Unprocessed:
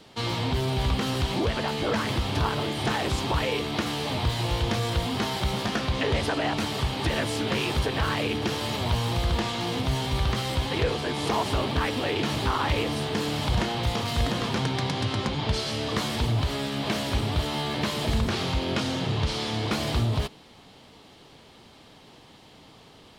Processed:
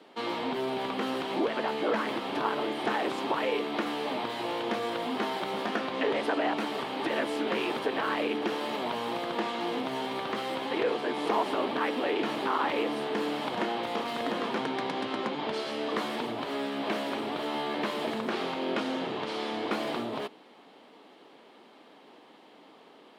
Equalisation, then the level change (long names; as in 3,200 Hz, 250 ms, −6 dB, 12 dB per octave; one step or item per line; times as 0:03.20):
high-pass filter 250 Hz 24 dB per octave
parametric band 5,900 Hz −11 dB 1.7 octaves
high-shelf EQ 10,000 Hz −12 dB
0.0 dB